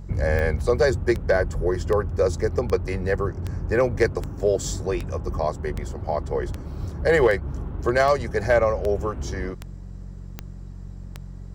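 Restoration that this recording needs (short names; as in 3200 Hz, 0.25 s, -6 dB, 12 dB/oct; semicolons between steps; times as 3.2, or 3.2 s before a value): clip repair -10 dBFS; de-click; de-hum 45.8 Hz, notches 4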